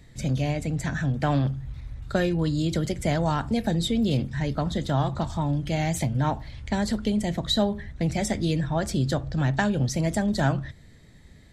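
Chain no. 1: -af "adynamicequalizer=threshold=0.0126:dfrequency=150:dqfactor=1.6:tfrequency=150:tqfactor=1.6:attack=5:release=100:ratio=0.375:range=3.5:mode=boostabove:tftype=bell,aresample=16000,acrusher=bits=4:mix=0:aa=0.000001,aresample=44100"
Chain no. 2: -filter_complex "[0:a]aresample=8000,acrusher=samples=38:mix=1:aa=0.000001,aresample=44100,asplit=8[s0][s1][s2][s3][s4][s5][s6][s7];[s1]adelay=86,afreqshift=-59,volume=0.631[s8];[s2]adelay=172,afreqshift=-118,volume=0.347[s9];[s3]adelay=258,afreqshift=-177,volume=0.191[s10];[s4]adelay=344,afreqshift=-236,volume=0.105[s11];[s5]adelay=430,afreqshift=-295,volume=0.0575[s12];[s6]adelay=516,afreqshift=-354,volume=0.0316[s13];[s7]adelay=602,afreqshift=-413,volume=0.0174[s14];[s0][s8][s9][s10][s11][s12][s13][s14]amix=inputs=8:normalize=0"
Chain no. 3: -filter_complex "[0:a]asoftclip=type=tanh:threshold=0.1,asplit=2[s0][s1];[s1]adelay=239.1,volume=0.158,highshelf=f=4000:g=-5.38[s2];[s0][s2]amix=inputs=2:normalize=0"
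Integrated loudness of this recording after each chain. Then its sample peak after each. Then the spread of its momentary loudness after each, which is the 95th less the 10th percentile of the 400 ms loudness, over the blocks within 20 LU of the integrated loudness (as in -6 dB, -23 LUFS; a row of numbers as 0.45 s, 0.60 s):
-21.5 LUFS, -28.0 LUFS, -28.5 LUFS; -6.0 dBFS, -10.5 dBFS, -19.0 dBFS; 4 LU, 6 LU, 4 LU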